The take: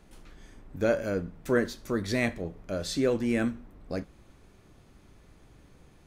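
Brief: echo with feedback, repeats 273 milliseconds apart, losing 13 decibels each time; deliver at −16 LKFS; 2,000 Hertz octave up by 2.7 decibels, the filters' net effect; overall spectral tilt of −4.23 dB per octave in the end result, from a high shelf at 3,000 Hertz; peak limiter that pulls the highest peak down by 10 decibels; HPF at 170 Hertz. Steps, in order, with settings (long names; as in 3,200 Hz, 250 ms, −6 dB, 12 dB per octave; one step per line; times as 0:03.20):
high-pass filter 170 Hz
parametric band 2,000 Hz +4.5 dB
high-shelf EQ 3,000 Hz −3.5 dB
brickwall limiter −20 dBFS
repeating echo 273 ms, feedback 22%, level −13 dB
level +17 dB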